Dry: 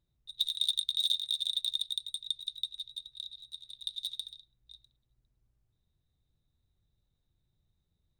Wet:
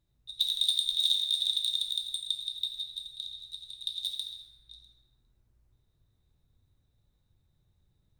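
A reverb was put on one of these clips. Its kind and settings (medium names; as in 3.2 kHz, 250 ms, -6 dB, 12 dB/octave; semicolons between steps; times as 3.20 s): plate-style reverb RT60 3.2 s, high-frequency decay 0.25×, DRR -2 dB; trim +2 dB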